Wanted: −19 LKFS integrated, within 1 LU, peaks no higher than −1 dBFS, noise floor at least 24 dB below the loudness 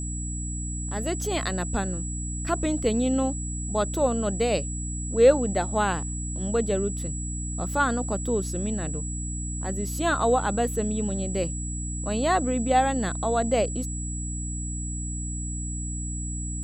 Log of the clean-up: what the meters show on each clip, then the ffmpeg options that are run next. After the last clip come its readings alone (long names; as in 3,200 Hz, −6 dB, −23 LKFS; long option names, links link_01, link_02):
mains hum 60 Hz; hum harmonics up to 300 Hz; level of the hum −30 dBFS; interfering tone 7,800 Hz; level of the tone −35 dBFS; integrated loudness −26.5 LKFS; sample peak −6.5 dBFS; target loudness −19.0 LKFS
→ -af "bandreject=frequency=60:width_type=h:width=4,bandreject=frequency=120:width_type=h:width=4,bandreject=frequency=180:width_type=h:width=4,bandreject=frequency=240:width_type=h:width=4,bandreject=frequency=300:width_type=h:width=4"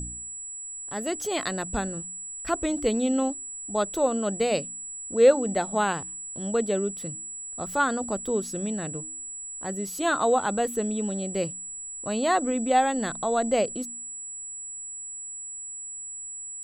mains hum none found; interfering tone 7,800 Hz; level of the tone −35 dBFS
→ -af "bandreject=frequency=7800:width=30"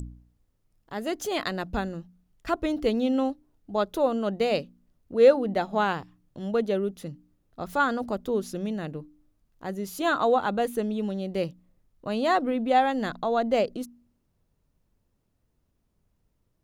interfering tone none found; integrated loudness −26.5 LKFS; sample peak −6.5 dBFS; target loudness −19.0 LKFS
→ -af "volume=7.5dB,alimiter=limit=-1dB:level=0:latency=1"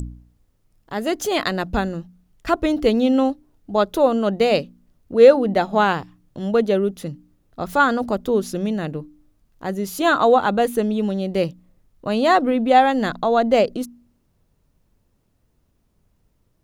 integrated loudness −19.5 LKFS; sample peak −1.0 dBFS; background noise floor −66 dBFS